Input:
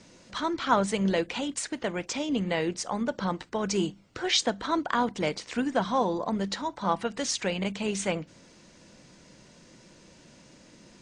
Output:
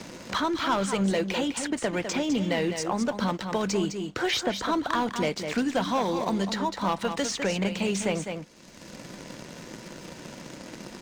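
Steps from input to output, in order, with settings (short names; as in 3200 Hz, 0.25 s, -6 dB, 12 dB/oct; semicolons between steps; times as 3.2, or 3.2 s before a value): sample leveller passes 2; echo 0.203 s -9.5 dB; three-band squash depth 70%; gain -5.5 dB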